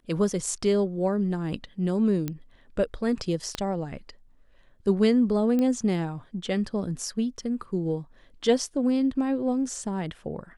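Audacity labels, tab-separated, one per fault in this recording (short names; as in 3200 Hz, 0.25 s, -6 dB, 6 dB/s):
2.280000	2.280000	pop -16 dBFS
3.550000	3.550000	pop -15 dBFS
5.590000	5.590000	pop -16 dBFS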